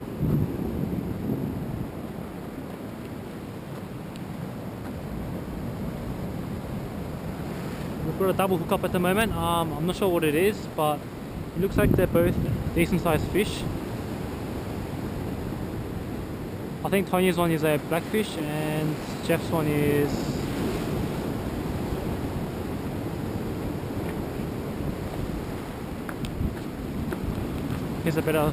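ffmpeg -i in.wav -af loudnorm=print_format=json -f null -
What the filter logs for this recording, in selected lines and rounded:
"input_i" : "-28.4",
"input_tp" : "-8.6",
"input_lra" : "9.2",
"input_thresh" : "-38.4",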